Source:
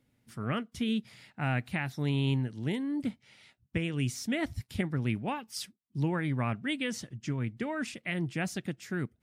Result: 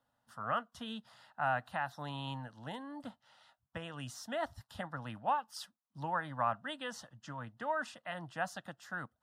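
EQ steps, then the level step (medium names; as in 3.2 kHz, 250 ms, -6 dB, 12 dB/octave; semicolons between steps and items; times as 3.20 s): three-band isolator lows -20 dB, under 430 Hz, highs -15 dB, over 3.2 kHz; static phaser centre 940 Hz, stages 4; +6.0 dB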